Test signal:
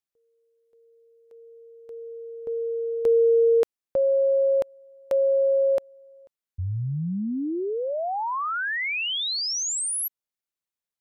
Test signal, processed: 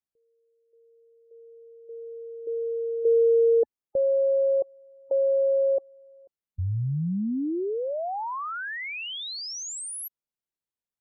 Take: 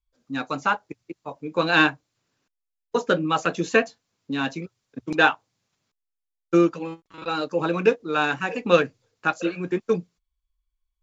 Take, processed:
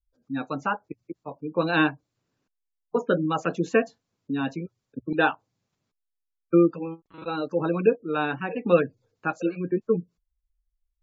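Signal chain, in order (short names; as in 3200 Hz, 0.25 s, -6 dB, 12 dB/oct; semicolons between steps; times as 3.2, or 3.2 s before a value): spectral gate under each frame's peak -25 dB strong; tilt shelf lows +4.5 dB, about 870 Hz; gain -3.5 dB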